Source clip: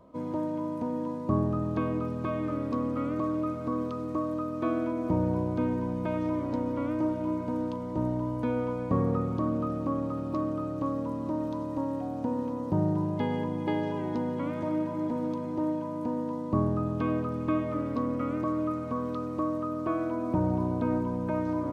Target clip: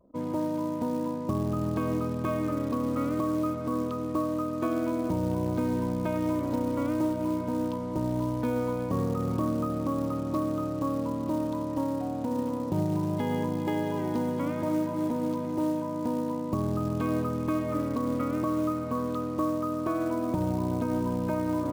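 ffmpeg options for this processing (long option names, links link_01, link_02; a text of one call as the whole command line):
ffmpeg -i in.wav -af "alimiter=limit=-21dB:level=0:latency=1:release=139,acrusher=bits=6:mode=log:mix=0:aa=0.000001,anlmdn=0.00631,volume=2dB" out.wav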